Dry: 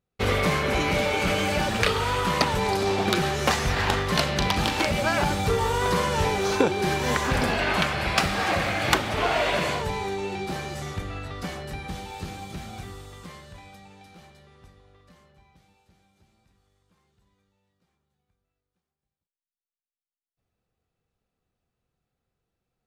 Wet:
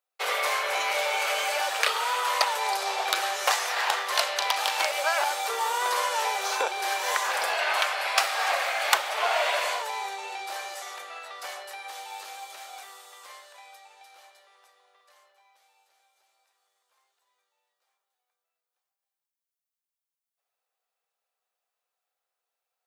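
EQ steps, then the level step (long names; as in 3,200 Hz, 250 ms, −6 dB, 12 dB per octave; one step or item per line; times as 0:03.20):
high-pass filter 540 Hz 24 dB per octave
spectral tilt +3.5 dB per octave
parametric band 690 Hz +9.5 dB 2.6 octaves
−8.0 dB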